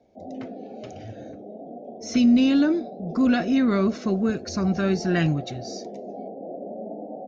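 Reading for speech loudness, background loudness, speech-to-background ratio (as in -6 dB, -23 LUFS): -22.5 LUFS, -37.5 LUFS, 15.0 dB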